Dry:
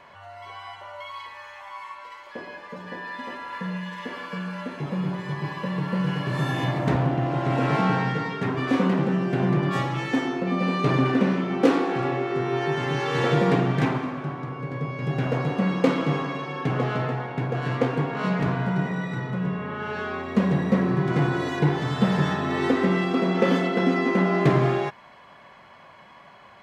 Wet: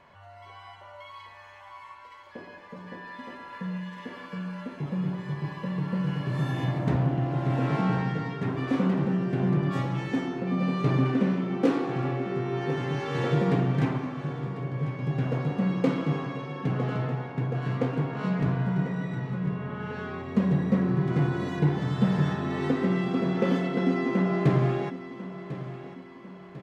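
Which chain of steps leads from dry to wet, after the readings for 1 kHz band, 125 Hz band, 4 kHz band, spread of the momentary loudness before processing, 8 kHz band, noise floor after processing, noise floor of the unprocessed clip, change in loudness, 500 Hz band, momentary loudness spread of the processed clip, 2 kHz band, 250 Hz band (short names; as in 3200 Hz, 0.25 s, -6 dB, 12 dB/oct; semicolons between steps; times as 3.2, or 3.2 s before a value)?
-7.0 dB, -1.0 dB, -7.5 dB, 16 LU, n/a, -48 dBFS, -49 dBFS, -3.0 dB, -5.0 dB, 20 LU, -7.5 dB, -2.5 dB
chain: low shelf 290 Hz +8.5 dB; on a send: feedback echo 1.047 s, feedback 45%, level -14 dB; on the sum: gain -8 dB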